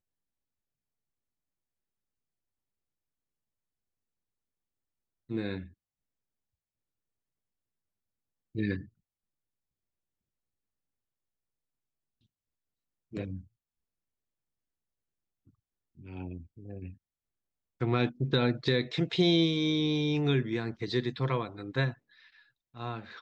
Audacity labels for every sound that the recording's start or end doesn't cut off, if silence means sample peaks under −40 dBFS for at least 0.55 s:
5.300000	5.640000	sound
8.550000	8.810000	sound
13.130000	13.400000	sound
16.060000	16.910000	sound
17.810000	21.930000	sound